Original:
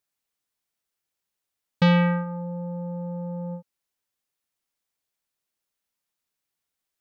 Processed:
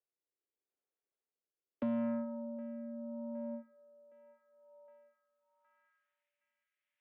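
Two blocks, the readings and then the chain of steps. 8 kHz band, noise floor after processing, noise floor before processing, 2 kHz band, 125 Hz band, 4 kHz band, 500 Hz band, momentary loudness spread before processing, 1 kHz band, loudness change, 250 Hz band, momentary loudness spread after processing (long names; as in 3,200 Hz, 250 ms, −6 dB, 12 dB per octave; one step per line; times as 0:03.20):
can't be measured, below −85 dBFS, −85 dBFS, −27.5 dB, −32.0 dB, below −35 dB, −11.0 dB, 15 LU, −20.0 dB, −14.5 dB, −11.5 dB, 9 LU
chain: on a send: delay with a band-pass on its return 765 ms, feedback 39%, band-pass 890 Hz, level −14 dB
on the sum: single-sideband voice off tune +58 Hz 150–3,300 Hz
four-comb reverb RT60 0.44 s, combs from 27 ms, DRR 17.5 dB
rotating-speaker cabinet horn 0.8 Hz
downward compressor, threshold −19 dBFS, peak gain reduction 4 dB
band-pass filter sweep 410 Hz → 2,100 Hz, 0:04.39–0:06.30
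notch filter 960 Hz, Q 24
soft clipping −28 dBFS, distortion −17 dB
one half of a high-frequency compander encoder only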